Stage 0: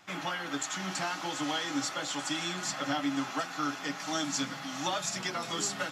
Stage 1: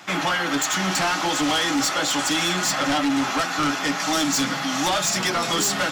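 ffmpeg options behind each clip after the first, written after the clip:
-filter_complex "[0:a]highpass=130,asplit=2[s0][s1];[s1]aeval=exprs='0.119*sin(PI/2*3.98*val(0)/0.119)':c=same,volume=0.398[s2];[s0][s2]amix=inputs=2:normalize=0,volume=1.58"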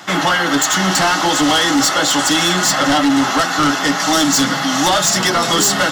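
-af "bandreject=f=2400:w=5.8,volume=2.51"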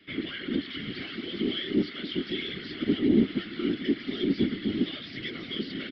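-filter_complex "[0:a]aresample=11025,aresample=44100,asplit=3[s0][s1][s2];[s0]bandpass=f=270:t=q:w=8,volume=1[s3];[s1]bandpass=f=2290:t=q:w=8,volume=0.501[s4];[s2]bandpass=f=3010:t=q:w=8,volume=0.355[s5];[s3][s4][s5]amix=inputs=3:normalize=0,afftfilt=real='hypot(re,im)*cos(2*PI*random(0))':imag='hypot(re,im)*sin(2*PI*random(1))':win_size=512:overlap=0.75"

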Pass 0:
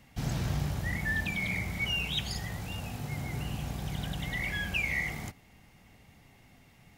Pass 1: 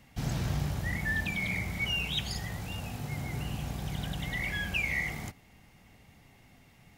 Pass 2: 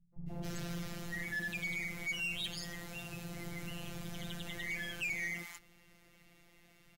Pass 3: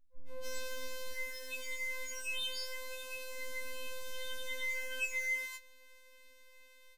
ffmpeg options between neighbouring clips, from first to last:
-af anull
-filter_complex "[0:a]afftfilt=real='hypot(re,im)*cos(PI*b)':imag='0':win_size=1024:overlap=0.75,acrossover=split=150|920[s0][s1][s2];[s1]adelay=130[s3];[s2]adelay=270[s4];[s0][s3][s4]amix=inputs=3:normalize=0,asoftclip=type=tanh:threshold=0.0224,volume=1.12"
-af "afftfilt=real='re*3.46*eq(mod(b,12),0)':imag='im*3.46*eq(mod(b,12),0)':win_size=2048:overlap=0.75"

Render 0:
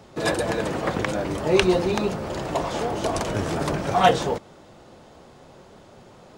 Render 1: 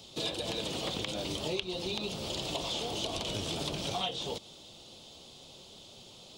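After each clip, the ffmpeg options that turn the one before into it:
-filter_complex "[0:a]acrossover=split=3500[s0][s1];[s1]acompressor=threshold=0.00708:ratio=4:attack=1:release=60[s2];[s0][s2]amix=inputs=2:normalize=0,highshelf=f=2400:t=q:w=3:g=12,acompressor=threshold=0.0708:ratio=10,volume=0.398"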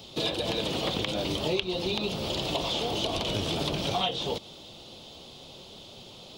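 -af "equalizer=f=7900:t=o:w=1.1:g=-8.5,volume=2.11"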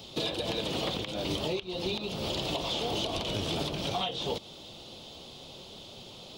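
-af "alimiter=limit=0.0891:level=0:latency=1:release=338"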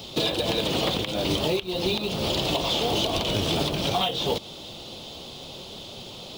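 -af "acrusher=bits=5:mode=log:mix=0:aa=0.000001,volume=2.24"

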